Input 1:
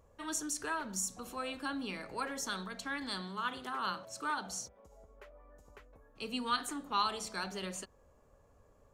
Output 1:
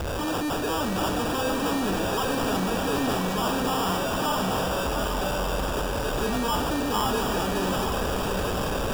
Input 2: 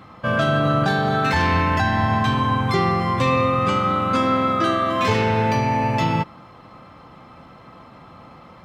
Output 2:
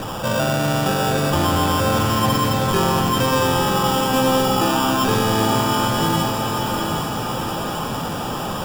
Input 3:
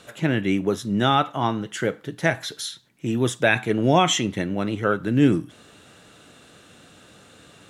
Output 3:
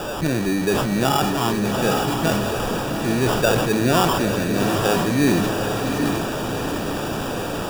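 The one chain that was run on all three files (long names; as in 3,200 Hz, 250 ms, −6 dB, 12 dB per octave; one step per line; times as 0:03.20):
converter with a step at zero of −24.5 dBFS
parametric band 420 Hz +2.5 dB
in parallel at 0 dB: downward compressor, threshold −27 dBFS
on the sum: decimation without filtering 21×
feedback delay with all-pass diffusion 798 ms, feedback 56%, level −4.5 dB
level that may fall only so fast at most 29 dB per second
level −5 dB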